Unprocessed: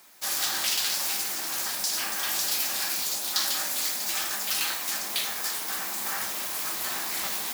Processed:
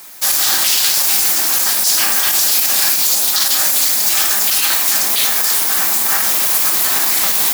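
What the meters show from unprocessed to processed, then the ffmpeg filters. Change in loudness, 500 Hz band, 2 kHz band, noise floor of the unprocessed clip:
+15.5 dB, +11.5 dB, +11.5 dB, -33 dBFS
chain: -af "highshelf=f=6500:g=7,alimiter=level_in=5.62:limit=0.891:release=50:level=0:latency=1,volume=0.794"

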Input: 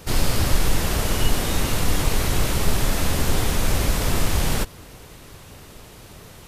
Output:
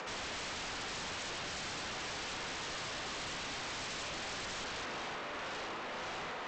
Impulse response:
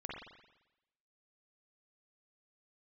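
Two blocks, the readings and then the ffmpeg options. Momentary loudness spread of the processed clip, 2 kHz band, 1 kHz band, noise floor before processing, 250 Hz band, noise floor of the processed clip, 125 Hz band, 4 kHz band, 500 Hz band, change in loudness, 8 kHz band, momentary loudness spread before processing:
1 LU, -9.0 dB, -10.5 dB, -44 dBFS, -20.5 dB, -42 dBFS, -28.0 dB, -10.5 dB, -15.0 dB, -16.0 dB, -16.5 dB, 21 LU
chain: -filter_complex "[0:a]acrossover=split=600 2700:gain=0.224 1 0.158[s0][s1][s2];[s0][s1][s2]amix=inputs=3:normalize=0[s3];[1:a]atrim=start_sample=2205,afade=t=out:st=0.29:d=0.01,atrim=end_sample=13230,asetrate=48510,aresample=44100[s4];[s3][s4]afir=irnorm=-1:irlink=0,areverse,acompressor=threshold=0.01:ratio=6,areverse,tremolo=f=1.8:d=0.36,highpass=f=190:w=0.5412,highpass=f=190:w=1.3066,alimiter=level_in=6.31:limit=0.0631:level=0:latency=1,volume=0.158,acompressor=mode=upward:threshold=0.00178:ratio=2.5,aresample=16000,aeval=exprs='0.0112*sin(PI/2*4.47*val(0)/0.0112)':c=same,aresample=44100,volume=1.12"

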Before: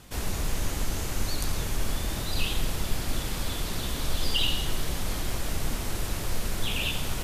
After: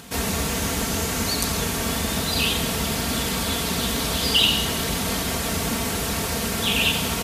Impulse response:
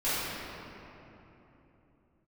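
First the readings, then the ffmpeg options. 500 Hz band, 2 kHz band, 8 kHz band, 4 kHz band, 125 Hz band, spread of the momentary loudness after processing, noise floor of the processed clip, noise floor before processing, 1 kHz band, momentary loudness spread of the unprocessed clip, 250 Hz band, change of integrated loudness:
+10.0 dB, +9.5 dB, +10.0 dB, +9.5 dB, +4.0 dB, 5 LU, -26 dBFS, -33 dBFS, +9.5 dB, 5 LU, +10.5 dB, +8.5 dB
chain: -af "highpass=f=69:w=0.5412,highpass=f=69:w=1.3066,aecho=1:1:4.4:0.58,acompressor=mode=upward:threshold=0.00224:ratio=2.5,volume=2.66"

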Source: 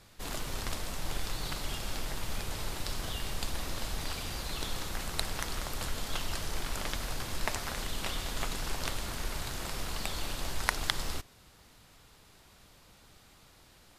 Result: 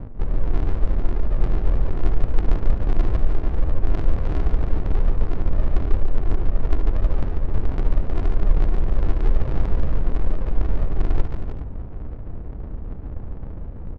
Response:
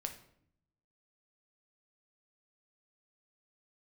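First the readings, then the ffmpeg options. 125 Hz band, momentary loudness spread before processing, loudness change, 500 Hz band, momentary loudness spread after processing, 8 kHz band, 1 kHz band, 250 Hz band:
+17.0 dB, 4 LU, +10.0 dB, +10.5 dB, 11 LU, under -20 dB, +2.5 dB, +12.5 dB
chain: -af "apsyclip=9.44,areverse,acompressor=threshold=0.0562:ratio=12,areverse,aemphasis=mode=reproduction:type=bsi,aresample=11025,acrusher=samples=25:mix=1:aa=0.000001:lfo=1:lforange=15:lforate=2.1,aresample=44100,adynamicsmooth=sensitivity=0.5:basefreq=620,aecho=1:1:71|143|316|389:0.2|0.531|0.355|0.178,volume=0.75"

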